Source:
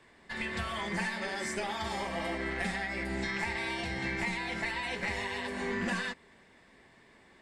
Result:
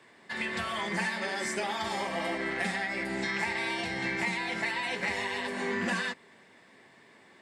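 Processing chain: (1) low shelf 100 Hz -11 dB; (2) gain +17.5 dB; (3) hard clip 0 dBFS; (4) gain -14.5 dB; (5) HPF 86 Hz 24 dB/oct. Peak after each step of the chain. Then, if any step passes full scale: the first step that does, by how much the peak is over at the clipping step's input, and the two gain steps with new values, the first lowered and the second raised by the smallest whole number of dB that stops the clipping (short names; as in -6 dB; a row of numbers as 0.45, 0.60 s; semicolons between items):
-21.0, -3.5, -3.5, -18.0, -17.5 dBFS; no overload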